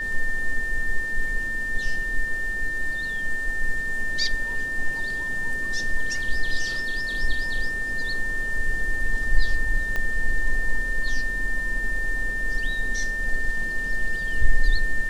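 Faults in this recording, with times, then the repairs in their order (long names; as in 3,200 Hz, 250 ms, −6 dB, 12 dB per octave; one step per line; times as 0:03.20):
whistle 1,800 Hz −26 dBFS
0:09.96: click −15 dBFS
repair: click removal
notch filter 1,800 Hz, Q 30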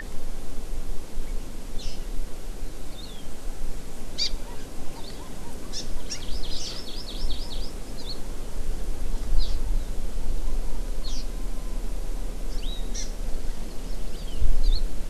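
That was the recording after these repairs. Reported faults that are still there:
0:09.96: click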